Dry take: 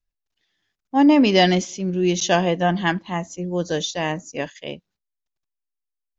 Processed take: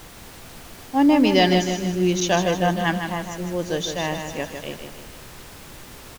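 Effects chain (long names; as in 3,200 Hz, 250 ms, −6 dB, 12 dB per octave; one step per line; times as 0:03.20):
background noise pink −40 dBFS
repeating echo 155 ms, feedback 48%, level −7 dB
level −2 dB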